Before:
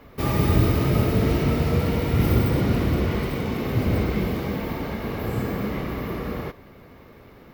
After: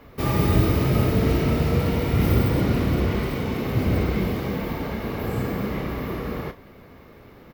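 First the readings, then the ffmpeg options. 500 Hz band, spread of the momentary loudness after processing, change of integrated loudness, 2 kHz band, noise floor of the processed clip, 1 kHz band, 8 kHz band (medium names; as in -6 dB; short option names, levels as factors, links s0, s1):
+0.5 dB, 9 LU, +0.5 dB, +0.5 dB, -48 dBFS, +0.5 dB, +0.5 dB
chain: -filter_complex "[0:a]asplit=2[s0][s1];[s1]adelay=31,volume=0.282[s2];[s0][s2]amix=inputs=2:normalize=0"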